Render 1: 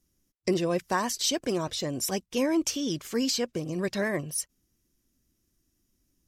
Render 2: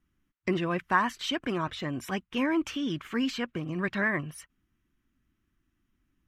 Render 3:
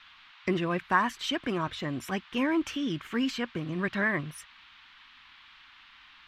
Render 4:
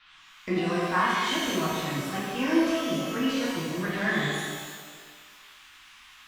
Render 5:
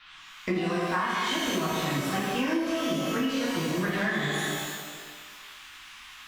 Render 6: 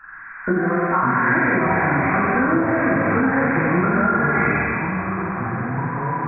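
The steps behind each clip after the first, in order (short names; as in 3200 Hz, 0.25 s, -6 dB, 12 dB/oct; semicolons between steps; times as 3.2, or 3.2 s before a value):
EQ curve 290 Hz 0 dB, 510 Hz -8 dB, 1300 Hz +8 dB, 3100 Hz +1 dB, 5000 Hz -16 dB
band noise 970–3700 Hz -55 dBFS
shimmer reverb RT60 1.6 s, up +12 st, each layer -8 dB, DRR -8 dB; gain -6.5 dB
compressor 12:1, threshold -29 dBFS, peak gain reduction 12 dB; gain +5 dB
nonlinear frequency compression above 1300 Hz 4:1; echoes that change speed 0.356 s, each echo -6 st, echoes 2, each echo -6 dB; gain +8 dB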